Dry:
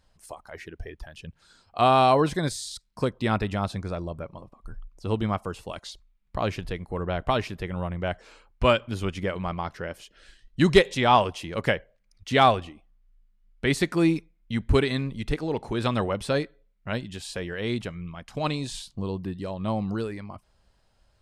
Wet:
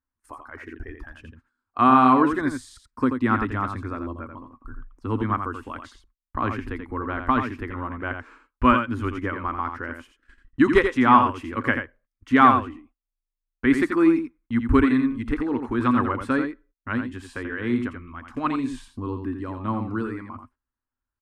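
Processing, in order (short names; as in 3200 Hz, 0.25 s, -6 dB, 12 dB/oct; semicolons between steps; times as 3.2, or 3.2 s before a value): gate -50 dBFS, range -25 dB; EQ curve 110 Hz 0 dB, 180 Hz -15 dB, 250 Hz +12 dB, 430 Hz -3 dB, 660 Hz -9 dB, 1100 Hz +8 dB, 1600 Hz +6 dB, 4000 Hz -14 dB, 5800 Hz -12 dB, 8200 Hz -10 dB; echo 85 ms -7 dB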